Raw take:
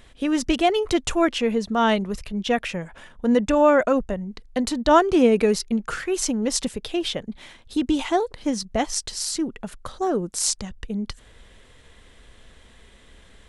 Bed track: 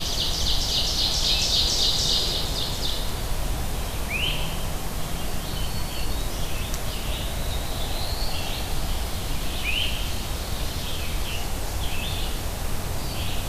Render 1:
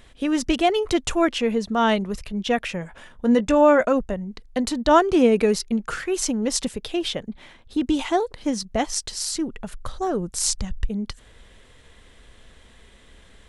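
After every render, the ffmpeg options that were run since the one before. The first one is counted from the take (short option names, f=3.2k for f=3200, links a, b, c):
-filter_complex "[0:a]asettb=1/sr,asplit=3[a][b][c];[a]atrim=end=2.794[d];[b]atrim=start=2.79:end=3.89,asetpts=PTS-STARTPTS,afade=t=in:d=0.004:c=qsin,afade=t=out:st=1.096:d=0.004:c=qsin,asplit=2[e][f];[f]adelay=17,volume=-12dB[g];[e][g]amix=inputs=2:normalize=0,atrim=end_sample=48510[h];[c]atrim=start=3.886[i];[d][h]acrossfade=d=0.004:c1=hsin:c2=qsin[j];[j][i]acrossfade=d=0.004:c1=qsin:c2=hsin,asettb=1/sr,asplit=3[k][l][m];[k]atrim=end=7.294[n];[l]atrim=start=7.29:end=7.81,asetpts=PTS-STARTPTS,afade=t=in:d=0.004:c=qsin,afade=t=out:st=0.516:d=0.004:c=qsin,highshelf=f=3.8k:g=-9.5[o];[m]atrim=start=7.806[p];[n][o]acrossfade=d=0.004:c1=hsin:c2=qsin[q];[q][p]acrossfade=d=0.004:c1=qsin:c2=hsin,asettb=1/sr,asplit=3[r][s][t];[r]atrim=end=9.174[u];[s]atrim=start=9.17:end=10.89,asetpts=PTS-STARTPTS,afade=t=in:d=0.004:c=qsin,afade=t=out:st=1.716:d=0.004:c=qsin,asubboost=boost=8.5:cutoff=130[v];[t]atrim=start=10.886[w];[u][v]acrossfade=d=0.004:c1=hsin:c2=qsin[x];[x][w]acrossfade=d=0.004:c1=qsin:c2=hsin"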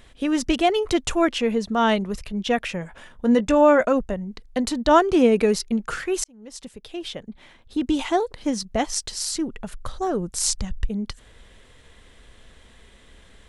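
-filter_complex "[0:a]asplit=2[a][b];[a]atrim=end=6.24,asetpts=PTS-STARTPTS,afade=t=out:st=6.236:d=0.004:c=hsin[c];[b]atrim=start=6.24,asetpts=PTS-STARTPTS,afade=t=in:d=1.78[d];[c][d]concat=n=2:v=0:a=1"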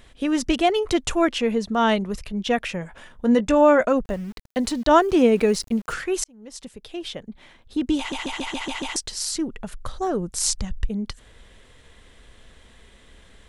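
-filter_complex "[0:a]asettb=1/sr,asplit=3[a][b][c];[a]atrim=end=4.054[d];[b]atrim=start=4.05:end=5.93,asetpts=PTS-STARTPTS,afade=t=in:d=0.004:c=qsin,afade=t=out:st=1.876:d=0.004:c=qsin,aeval=exprs='val(0)*gte(abs(val(0)),0.00841)':c=same[e];[c]atrim=start=5.926[f];[d][e]acrossfade=d=0.004:c1=hsin:c2=qsin[g];[g][f]acrossfade=d=0.004:c1=qsin:c2=hsin,asplit=8[h][i][j][k][l][m][n][o];[h]atrim=end=8.122[p];[i]atrim=start=7.978:end=8.122[q];[j]atrim=start=7.978:end=8.122[r];[k]atrim=start=7.978:end=8.122[s];[l]atrim=start=7.978:end=8.122[t];[m]atrim=start=7.978:end=8.122[u];[n]atrim=start=7.978:end=8.122[v];[o]atrim=start=8.958[w];[p][q]acrossfade=d=0.004:c1=hsin:c2=hsin[x];[x][r]acrossfade=d=0.004:c1=hsin:c2=hsin[y];[y][s]acrossfade=d=0.004:c1=hsin:c2=hsin[z];[z][t]acrossfade=d=0.004:c1=hsin:c2=hsin[aa];[aa][u]acrossfade=d=0.004:c1=hsin:c2=hsin[ab];[ab][v]acrossfade=d=0.004:c1=hsin:c2=hsin[ac];[ac][w]acrossfade=d=0.004:c1=hsin:c2=hsin"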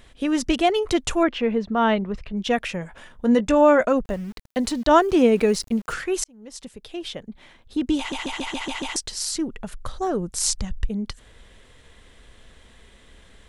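-filter_complex "[0:a]asettb=1/sr,asplit=3[a][b][c];[a]atrim=end=1.234[d];[b]atrim=start=1.23:end=2.37,asetpts=PTS-STARTPTS,afade=t=in:d=0.004:c=qsin,afade=t=out:st=1.136:d=0.004:c=qsin,lowpass=2.8k[e];[c]atrim=start=2.366[f];[d][e]acrossfade=d=0.004:c1=hsin:c2=qsin[g];[g][f]acrossfade=d=0.004:c1=qsin:c2=hsin"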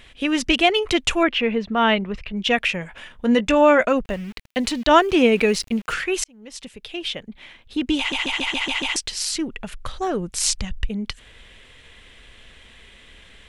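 -af "equalizer=f=2.6k:t=o:w=1.2:g=10.5"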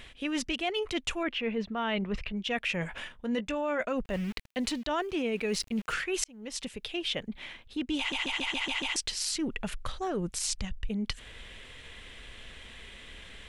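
-af "alimiter=limit=-9.5dB:level=0:latency=1:release=219,areverse,acompressor=threshold=-29dB:ratio=6,areverse"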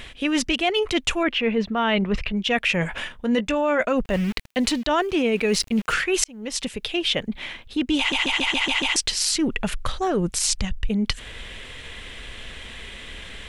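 -af "volume=9.5dB"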